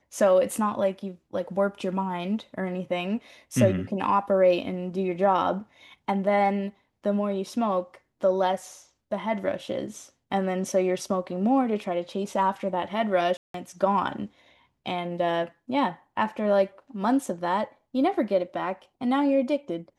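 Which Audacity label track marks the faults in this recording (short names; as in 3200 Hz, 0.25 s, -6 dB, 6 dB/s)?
13.370000	13.540000	gap 0.173 s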